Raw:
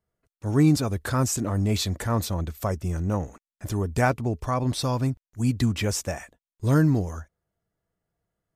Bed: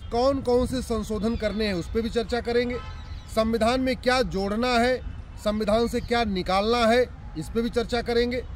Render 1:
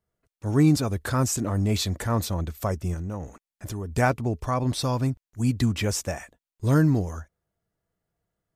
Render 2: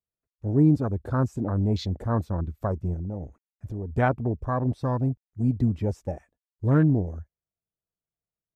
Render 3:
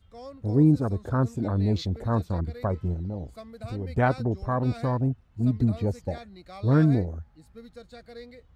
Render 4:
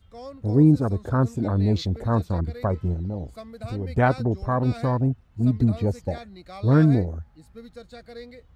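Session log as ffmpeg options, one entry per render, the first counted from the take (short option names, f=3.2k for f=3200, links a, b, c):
-filter_complex "[0:a]asettb=1/sr,asplit=3[a][b][c];[a]atrim=end=2.944[d];[b]atrim=start=2.94:end=3.97,asetpts=PTS-STARTPTS,afade=t=in:d=0.004:c=qsin,afade=t=out:st=1.026:d=0.004:c=qsin,acompressor=threshold=-31dB:ratio=2.5:attack=3.2:release=140:knee=1:detection=peak[e];[c]atrim=start=3.966[f];[d][e]acrossfade=d=0.004:c1=hsin:c2=qsin[g];[g][f]acrossfade=d=0.004:c1=qsin:c2=hsin"
-af "afwtdn=0.0282,highshelf=f=2.8k:g=-11"
-filter_complex "[1:a]volume=-20.5dB[a];[0:a][a]amix=inputs=2:normalize=0"
-af "volume=3dB"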